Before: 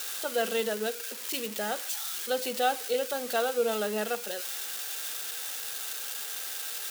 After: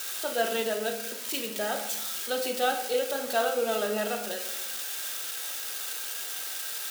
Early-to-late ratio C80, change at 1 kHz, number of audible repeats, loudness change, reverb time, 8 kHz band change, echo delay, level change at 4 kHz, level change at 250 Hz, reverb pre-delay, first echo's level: 11.0 dB, +1.0 dB, none, +1.0 dB, 0.95 s, +1.0 dB, none, +1.5 dB, +1.0 dB, 3 ms, none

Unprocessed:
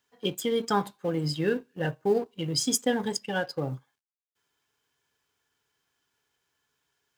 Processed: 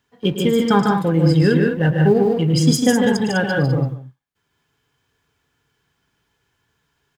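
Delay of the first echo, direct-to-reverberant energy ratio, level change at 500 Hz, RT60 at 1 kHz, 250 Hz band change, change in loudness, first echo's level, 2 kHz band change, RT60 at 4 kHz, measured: 0.109 s, none, +10.0 dB, none, +15.0 dB, +12.0 dB, -11.0 dB, +11.5 dB, none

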